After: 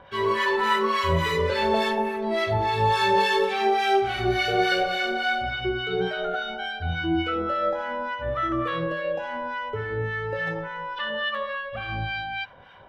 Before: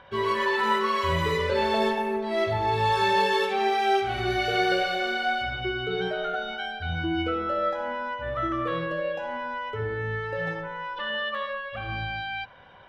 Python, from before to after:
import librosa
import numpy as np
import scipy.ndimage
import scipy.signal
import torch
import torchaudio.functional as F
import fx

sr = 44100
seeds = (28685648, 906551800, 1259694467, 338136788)

y = fx.harmonic_tremolo(x, sr, hz=3.5, depth_pct=70, crossover_hz=1000.0)
y = y * librosa.db_to_amplitude(5.0)